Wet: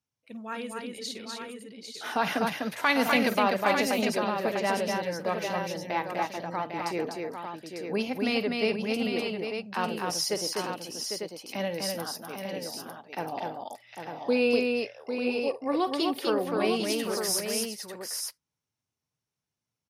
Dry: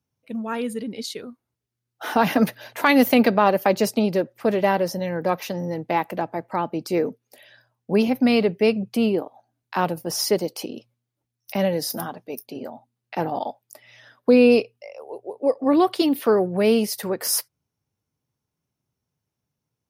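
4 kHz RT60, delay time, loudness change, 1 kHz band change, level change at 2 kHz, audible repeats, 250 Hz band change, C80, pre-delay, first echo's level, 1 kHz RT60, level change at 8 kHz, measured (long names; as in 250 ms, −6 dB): no reverb audible, 51 ms, −7.5 dB, −5.0 dB, −2.0 dB, 4, −9.0 dB, no reverb audible, no reverb audible, −14.0 dB, no reverb audible, −2.5 dB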